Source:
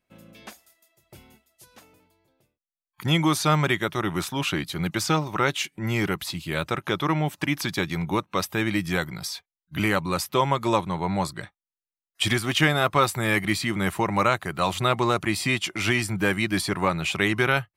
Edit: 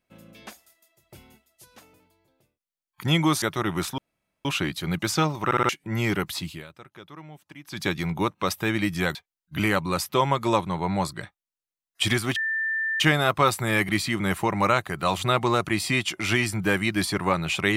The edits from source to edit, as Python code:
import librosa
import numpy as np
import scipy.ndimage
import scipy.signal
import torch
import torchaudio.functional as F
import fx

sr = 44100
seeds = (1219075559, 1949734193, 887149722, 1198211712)

y = fx.edit(x, sr, fx.cut(start_s=3.42, length_s=0.39),
    fx.insert_room_tone(at_s=4.37, length_s=0.47),
    fx.stutter_over(start_s=5.37, slice_s=0.06, count=4),
    fx.fade_down_up(start_s=6.42, length_s=1.32, db=-19.5, fade_s=0.19, curve='qua'),
    fx.cut(start_s=9.07, length_s=0.28),
    fx.insert_tone(at_s=12.56, length_s=0.64, hz=1780.0, db=-23.5), tone=tone)